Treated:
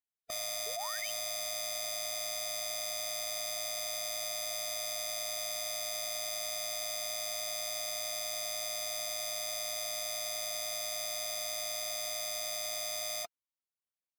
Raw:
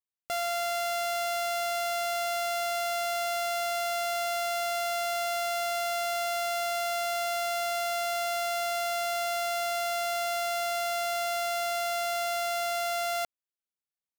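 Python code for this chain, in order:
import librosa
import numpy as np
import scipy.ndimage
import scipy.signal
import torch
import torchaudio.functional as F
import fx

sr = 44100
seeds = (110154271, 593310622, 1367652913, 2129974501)

y = fx.notch_comb(x, sr, f0_hz=460.0)
y = fx.spec_paint(y, sr, seeds[0], shape='rise', start_s=0.66, length_s=0.46, low_hz=460.0, high_hz=3500.0, level_db=-46.0)
y = fx.pitch_keep_formants(y, sr, semitones=-2.0)
y = y * librosa.db_to_amplitude(-5.5)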